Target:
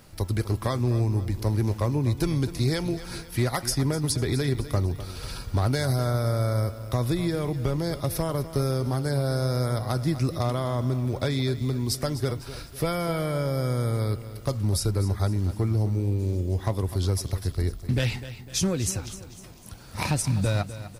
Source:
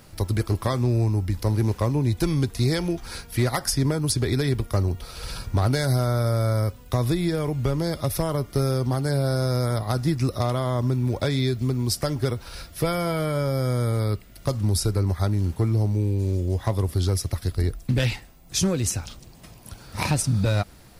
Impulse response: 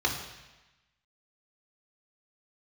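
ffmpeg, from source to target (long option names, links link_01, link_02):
-af "aecho=1:1:251|502|753|1004:0.211|0.0951|0.0428|0.0193,volume=-2.5dB"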